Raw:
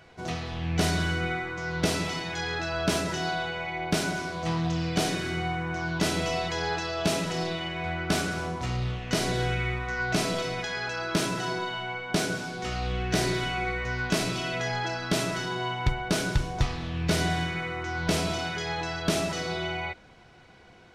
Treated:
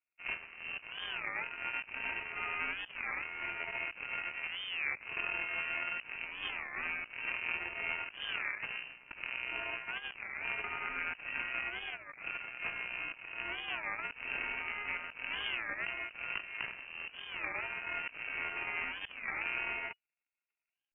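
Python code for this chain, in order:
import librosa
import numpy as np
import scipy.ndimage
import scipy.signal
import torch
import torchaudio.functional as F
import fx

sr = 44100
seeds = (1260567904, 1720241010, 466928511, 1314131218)

y = np.r_[np.sort(x[:len(x) // 8 * 8].reshape(-1, 8), axis=1).ravel(), x[len(x) // 8 * 8:]]
y = scipy.signal.sosfilt(scipy.signal.butter(4, 170.0, 'highpass', fs=sr, output='sos'), y)
y = fx.over_compress(y, sr, threshold_db=-32.0, ratio=-1.0)
y = fx.cheby_harmonics(y, sr, harmonics=(3, 5, 7), levels_db=(-27, -17, -13), full_scale_db=-15.5)
y = fx.air_absorb(y, sr, metres=420.0)
y = fx.freq_invert(y, sr, carrier_hz=2900)
y = fx.record_warp(y, sr, rpm=33.33, depth_cents=250.0)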